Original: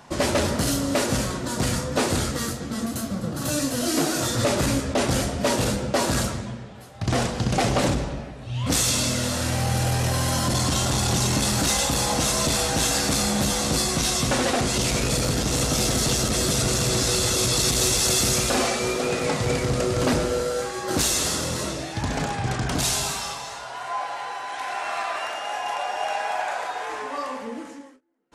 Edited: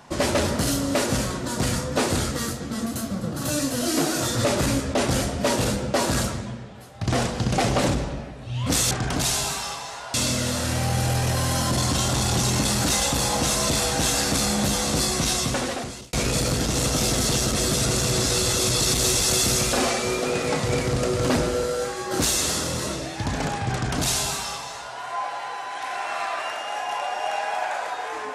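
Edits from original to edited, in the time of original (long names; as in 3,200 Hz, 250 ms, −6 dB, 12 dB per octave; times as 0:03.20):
0:14.11–0:14.90: fade out
0:22.50–0:23.73: duplicate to 0:08.91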